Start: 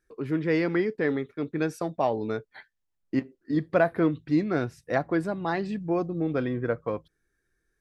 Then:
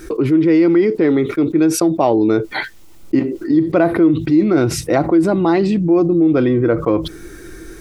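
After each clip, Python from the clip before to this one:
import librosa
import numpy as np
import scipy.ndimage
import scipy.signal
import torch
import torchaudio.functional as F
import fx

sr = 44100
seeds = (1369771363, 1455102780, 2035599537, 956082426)

y = fx.peak_eq(x, sr, hz=330.0, db=13.0, octaves=0.28)
y = fx.notch(y, sr, hz=1700.0, q=6.1)
y = fx.env_flatten(y, sr, amount_pct=70)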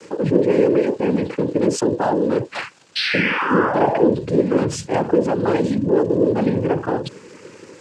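y = fx.dmg_crackle(x, sr, seeds[0], per_s=520.0, level_db=-30.0)
y = fx.spec_paint(y, sr, seeds[1], shape='fall', start_s=2.95, length_s=1.15, low_hz=430.0, high_hz=3200.0, level_db=-17.0)
y = fx.noise_vocoder(y, sr, seeds[2], bands=8)
y = y * 10.0 ** (-4.0 / 20.0)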